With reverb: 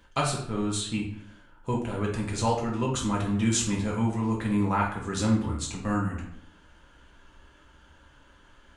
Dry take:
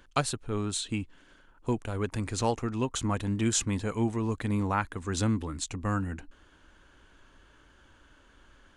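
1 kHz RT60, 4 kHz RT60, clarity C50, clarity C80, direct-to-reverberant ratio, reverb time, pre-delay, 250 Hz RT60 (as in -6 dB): 0.65 s, 0.45 s, 5.0 dB, 9.0 dB, -3.5 dB, 0.70 s, 3 ms, 0.75 s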